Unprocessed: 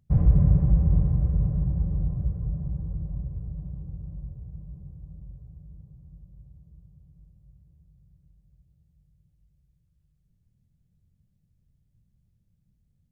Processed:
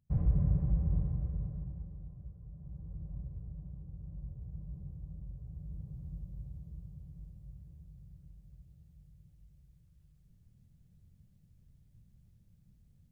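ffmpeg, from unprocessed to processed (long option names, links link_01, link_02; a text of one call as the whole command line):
ffmpeg -i in.wav -af "volume=15dB,afade=type=out:start_time=0.97:duration=1:silence=0.316228,afade=type=in:start_time=2.51:duration=0.66:silence=0.298538,afade=type=in:start_time=3.92:duration=0.9:silence=0.421697,afade=type=in:start_time=5.33:duration=0.68:silence=0.446684" out.wav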